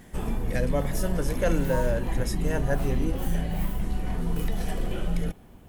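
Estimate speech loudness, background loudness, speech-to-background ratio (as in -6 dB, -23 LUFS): -30.5 LUFS, -31.0 LUFS, 0.5 dB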